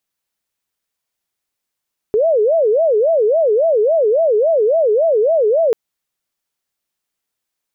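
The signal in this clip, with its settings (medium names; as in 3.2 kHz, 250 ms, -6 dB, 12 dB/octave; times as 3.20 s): siren wail 415–667 Hz 3.6 per s sine -10.5 dBFS 3.59 s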